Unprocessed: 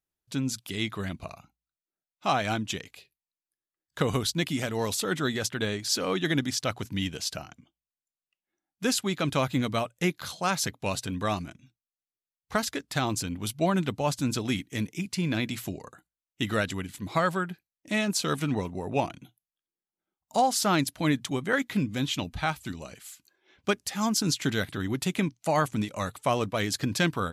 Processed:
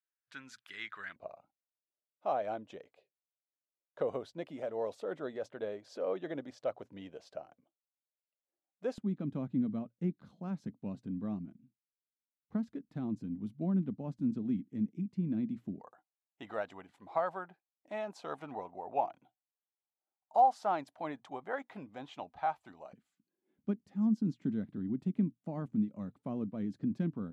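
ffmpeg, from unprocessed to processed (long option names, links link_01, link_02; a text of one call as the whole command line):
ffmpeg -i in.wav -af "asetnsamples=nb_out_samples=441:pad=0,asendcmd='1.16 bandpass f 570;8.98 bandpass f 220;15.81 bandpass f 760;22.93 bandpass f 220',bandpass=frequency=1600:width_type=q:width=3.3:csg=0" out.wav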